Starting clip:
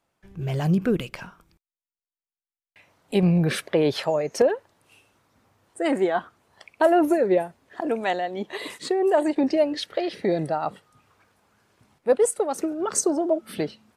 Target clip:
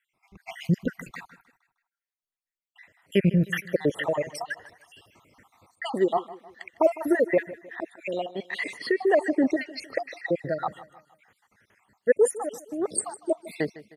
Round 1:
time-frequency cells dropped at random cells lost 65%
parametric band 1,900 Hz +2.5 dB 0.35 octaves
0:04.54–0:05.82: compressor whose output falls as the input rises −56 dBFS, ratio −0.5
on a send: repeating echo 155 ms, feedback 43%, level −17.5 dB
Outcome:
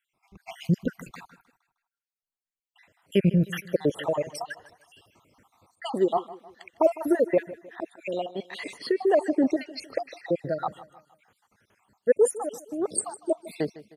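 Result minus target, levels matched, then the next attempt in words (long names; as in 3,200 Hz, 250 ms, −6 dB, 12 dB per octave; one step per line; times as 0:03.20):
2,000 Hz band −6.5 dB
time-frequency cells dropped at random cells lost 65%
parametric band 1,900 Hz +13 dB 0.35 octaves
0:04.54–0:05.82: compressor whose output falls as the input rises −56 dBFS, ratio −0.5
on a send: repeating echo 155 ms, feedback 43%, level −17.5 dB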